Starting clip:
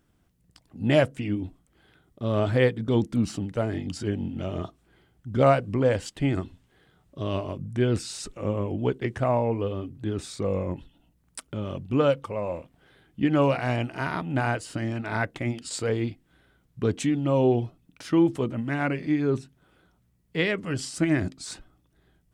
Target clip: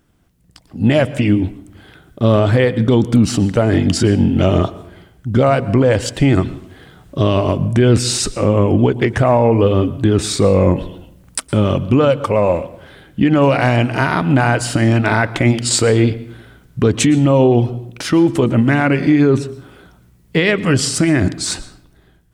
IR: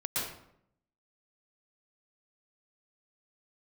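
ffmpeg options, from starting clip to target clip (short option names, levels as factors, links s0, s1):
-filter_complex "[0:a]dynaudnorm=f=190:g=7:m=3.98,alimiter=limit=0.251:level=0:latency=1:release=143,asplit=2[s0][s1];[1:a]atrim=start_sample=2205[s2];[s1][s2]afir=irnorm=-1:irlink=0,volume=0.0794[s3];[s0][s3]amix=inputs=2:normalize=0,volume=2.37"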